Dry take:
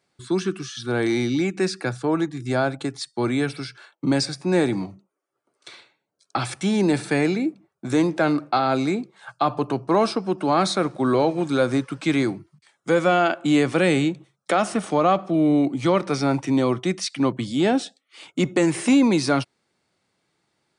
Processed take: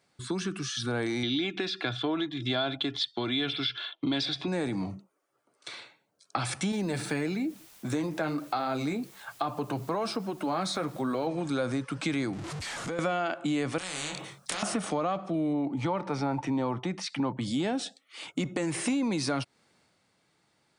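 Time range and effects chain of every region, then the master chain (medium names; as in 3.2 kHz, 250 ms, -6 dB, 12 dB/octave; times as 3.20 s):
1.23–4.48 s: resonant low-pass 3.4 kHz, resonance Q 11 + comb 2.9 ms, depth 51%
6.72–11.27 s: flange 1.1 Hz, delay 2.3 ms, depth 5.7 ms, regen -48% + word length cut 10-bit, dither triangular
12.33–12.99 s: jump at every zero crossing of -32.5 dBFS + low-pass 9 kHz 24 dB/octave + compression 4:1, threshold -35 dBFS
13.78–14.63 s: compression 2:1, threshold -28 dBFS + doubling 27 ms -4 dB + spectrum-flattening compressor 4:1
15.53–17.41 s: low-pass 2.2 kHz 6 dB/octave + peaking EQ 880 Hz +13 dB 0.21 oct
whole clip: compression 6:1, threshold -28 dBFS; peaking EQ 370 Hz -5.5 dB 0.22 oct; transient shaper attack -1 dB, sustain +4 dB; trim +1.5 dB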